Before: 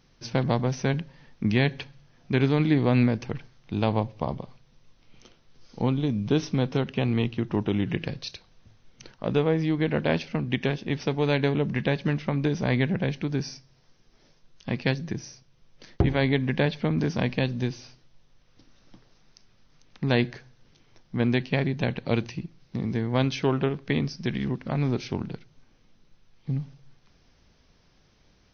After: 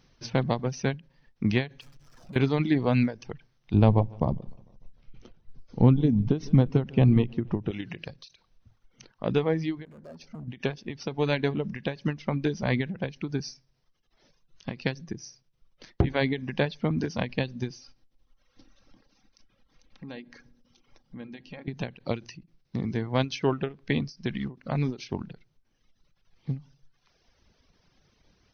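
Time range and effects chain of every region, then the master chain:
1.81–2.36 s: compression 8:1, threshold -44 dBFS + power-law waveshaper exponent 0.5
3.74–7.71 s: tilt EQ -3 dB/octave + feedback delay 150 ms, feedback 52%, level -15 dB
9.85–10.48 s: peaking EQ 2.8 kHz -14 dB 1.3 oct + compression 8:1, threshold -32 dBFS + hard clipper -34.5 dBFS
17.77–21.68 s: comb 3.7 ms, depth 42% + compression 3:1, threshold -43 dBFS + filtered feedback delay 62 ms, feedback 83%, low-pass 1.1 kHz, level -10 dB
whole clip: reverb removal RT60 1.2 s; endings held to a fixed fall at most 220 dB/s

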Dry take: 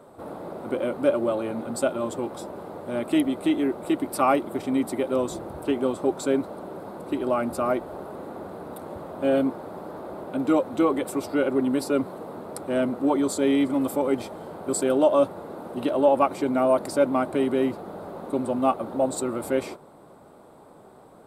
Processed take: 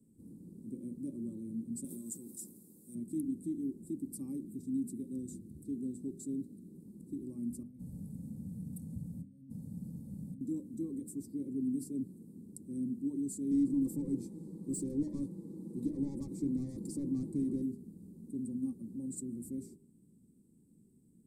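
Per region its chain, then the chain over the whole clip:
1.84–2.95 s: RIAA curve recording + decay stretcher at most 46 dB/s
4.47–6.75 s: high-pass 61 Hz + peaking EQ 3.8 kHz +5 dB 0.33 oct + step-sequenced notch 8.6 Hz 700–2000 Hz
7.63–10.41 s: peaking EQ 130 Hz +7 dB + compressor with a negative ratio -34 dBFS + comb 1.4 ms, depth 89%
13.51–17.62 s: comb 6.1 ms, depth 54% + overdrive pedal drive 22 dB, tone 1.4 kHz, clips at -7 dBFS
whole clip: elliptic band-stop 210–8300 Hz, stop band 50 dB; three-band isolator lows -12 dB, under 250 Hz, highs -15 dB, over 5.5 kHz; de-hum 49.52 Hz, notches 11; trim +2.5 dB

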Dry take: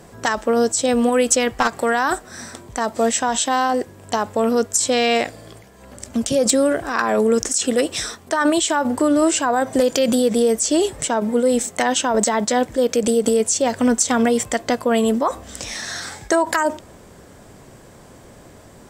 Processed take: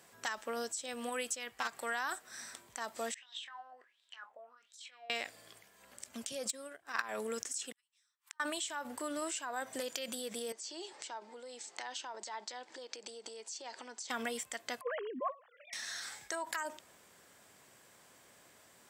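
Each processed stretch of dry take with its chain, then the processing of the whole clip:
3.14–5.10 s: compressor with a negative ratio -23 dBFS + wah-wah 1.4 Hz 610–3900 Hz, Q 8.6 + doubling 24 ms -10.5 dB
6.49–7.15 s: transient shaper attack +10 dB, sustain -8 dB + upward expansion, over -36 dBFS
7.72–8.40 s: inverted gate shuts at -23 dBFS, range -40 dB + brick-wall FIR high-pass 830 Hz
10.52–14.10 s: compression 3:1, threshold -29 dBFS + cabinet simulation 330–7200 Hz, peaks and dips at 350 Hz +10 dB, 870 Hz +9 dB, 4.6 kHz +8 dB
14.81–15.73 s: formants replaced by sine waves + low-pass 1.7 kHz
whole clip: differentiator; compression 2:1, threshold -34 dBFS; tone controls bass +6 dB, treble -13 dB; trim +1.5 dB

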